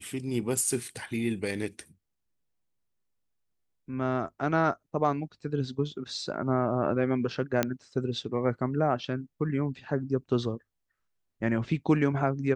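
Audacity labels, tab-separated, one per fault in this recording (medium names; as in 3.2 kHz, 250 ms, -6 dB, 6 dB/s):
7.630000	7.630000	pop -10 dBFS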